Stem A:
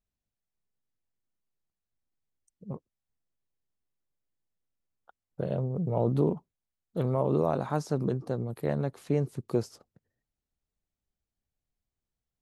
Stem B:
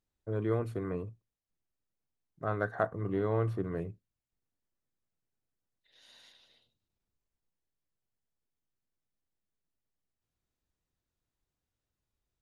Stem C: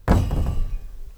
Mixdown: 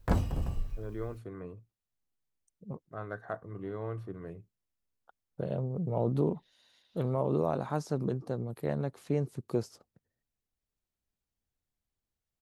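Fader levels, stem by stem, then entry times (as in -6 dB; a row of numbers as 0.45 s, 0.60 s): -3.0 dB, -7.5 dB, -10.0 dB; 0.00 s, 0.50 s, 0.00 s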